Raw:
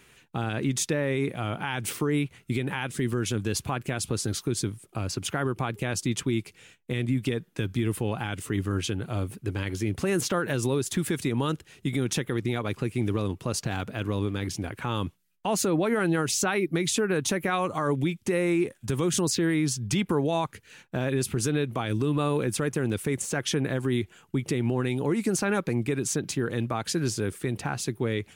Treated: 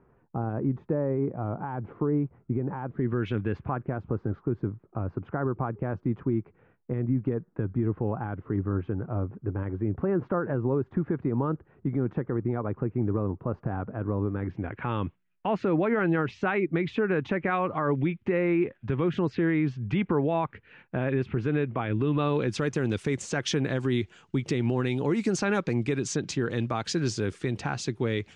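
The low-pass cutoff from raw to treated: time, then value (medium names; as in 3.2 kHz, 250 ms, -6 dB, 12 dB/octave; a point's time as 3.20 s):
low-pass 24 dB/octave
2.91 s 1.1 kHz
3.29 s 2.6 kHz
3.85 s 1.3 kHz
14.23 s 1.3 kHz
14.85 s 2.5 kHz
21.88 s 2.5 kHz
22.67 s 6.5 kHz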